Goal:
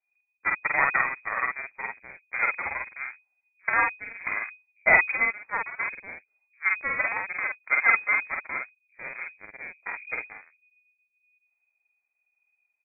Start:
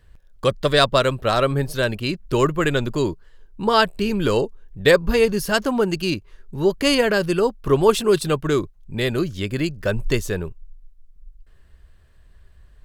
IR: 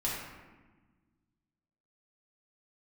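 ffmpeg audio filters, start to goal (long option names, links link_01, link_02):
-filter_complex "[0:a]aeval=exprs='0.794*(cos(1*acos(clip(val(0)/0.794,-1,1)))-cos(1*PI/2))+0.141*(cos(2*acos(clip(val(0)/0.794,-1,1)))-cos(2*PI/2))+0.0708*(cos(3*acos(clip(val(0)/0.794,-1,1)))-cos(3*PI/2))+0.0891*(cos(7*acos(clip(val(0)/0.794,-1,1)))-cos(7*PI/2))':channel_layout=same,lowpass=frequency=2100:width_type=q:width=0.5098,lowpass=frequency=2100:width_type=q:width=0.6013,lowpass=frequency=2100:width_type=q:width=0.9,lowpass=frequency=2100:width_type=q:width=2.563,afreqshift=-2500,asplit=2[link_01][link_02];[link_02]adelay=48,volume=-2dB[link_03];[link_01][link_03]amix=inputs=2:normalize=0,volume=-4.5dB"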